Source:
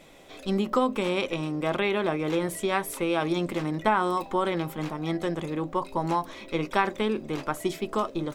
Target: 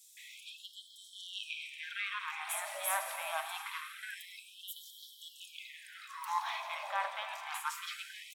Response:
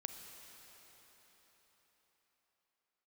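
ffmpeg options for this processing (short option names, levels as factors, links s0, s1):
-filter_complex "[0:a]areverse,acompressor=threshold=0.0178:ratio=20,areverse,aeval=exprs='0.0631*(cos(1*acos(clip(val(0)/0.0631,-1,1)))-cos(1*PI/2))+0.00708*(cos(4*acos(clip(val(0)/0.0631,-1,1)))-cos(4*PI/2))+0.00355*(cos(6*acos(clip(val(0)/0.0631,-1,1)))-cos(6*PI/2))+0.001*(cos(8*acos(clip(val(0)/0.0631,-1,1)))-cos(8*PI/2))':c=same,acrossover=split=560|5300[s0][s1][s2];[s0]adelay=70[s3];[s1]adelay=170[s4];[s3][s4][s2]amix=inputs=3:normalize=0[s5];[1:a]atrim=start_sample=2205[s6];[s5][s6]afir=irnorm=-1:irlink=0,afftfilt=real='re*gte(b*sr/1024,520*pow(3100/520,0.5+0.5*sin(2*PI*0.25*pts/sr)))':imag='im*gte(b*sr/1024,520*pow(3100/520,0.5+0.5*sin(2*PI*0.25*pts/sr)))':win_size=1024:overlap=0.75,volume=3.35"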